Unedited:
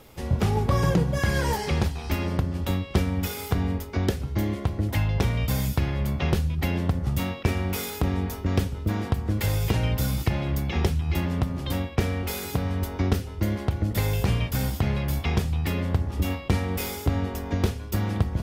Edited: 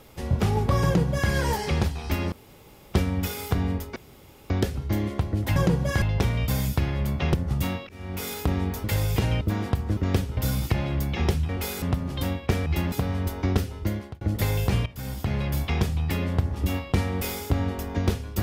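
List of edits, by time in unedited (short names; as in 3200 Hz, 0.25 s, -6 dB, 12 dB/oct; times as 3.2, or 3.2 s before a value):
0.84–1.3 copy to 5.02
2.32–2.94 room tone
3.96 insert room tone 0.54 s
6.34–6.9 cut
7.45–7.89 fade in
8.4–8.8 swap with 9.36–9.93
11.05–11.31 swap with 12.15–12.48
13.37–13.77 fade out
14.42–15.02 fade in, from -17 dB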